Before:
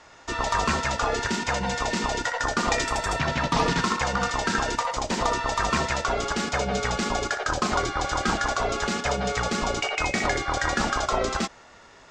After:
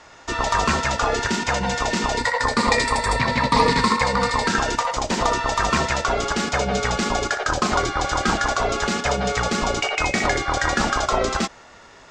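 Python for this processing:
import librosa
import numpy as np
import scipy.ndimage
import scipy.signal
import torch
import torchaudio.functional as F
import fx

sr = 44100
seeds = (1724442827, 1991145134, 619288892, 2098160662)

y = fx.ripple_eq(x, sr, per_octave=0.95, db=10, at=(2.17, 4.48))
y = y * 10.0 ** (4.0 / 20.0)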